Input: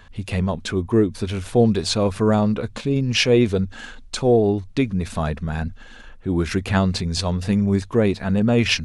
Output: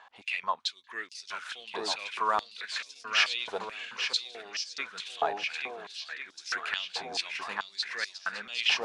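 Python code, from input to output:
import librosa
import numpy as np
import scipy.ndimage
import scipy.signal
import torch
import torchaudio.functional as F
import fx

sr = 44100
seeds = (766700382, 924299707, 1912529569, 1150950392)

y = fx.air_absorb(x, sr, metres=75.0)
y = fx.echo_swing(y, sr, ms=1399, ratio=1.5, feedback_pct=41, wet_db=-6)
y = fx.filter_held_highpass(y, sr, hz=4.6, low_hz=810.0, high_hz=5300.0)
y = F.gain(torch.from_numpy(y), -6.0).numpy()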